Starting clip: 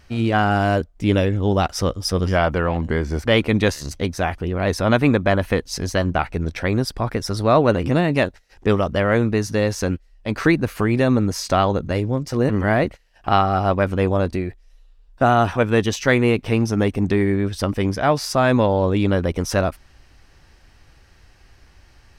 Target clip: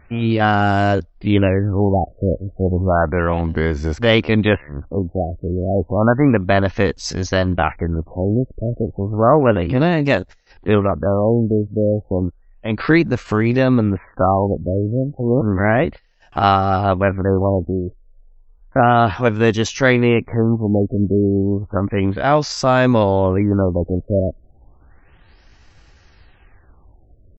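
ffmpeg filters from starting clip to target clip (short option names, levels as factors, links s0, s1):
-af "atempo=0.81,afftfilt=real='re*lt(b*sr/1024,650*pow(8000/650,0.5+0.5*sin(2*PI*0.32*pts/sr)))':imag='im*lt(b*sr/1024,650*pow(8000/650,0.5+0.5*sin(2*PI*0.32*pts/sr)))':win_size=1024:overlap=0.75,volume=1.33"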